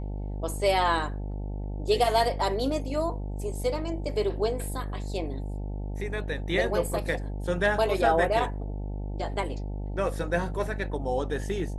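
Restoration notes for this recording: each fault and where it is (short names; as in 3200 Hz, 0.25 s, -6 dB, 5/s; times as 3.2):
buzz 50 Hz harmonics 18 -33 dBFS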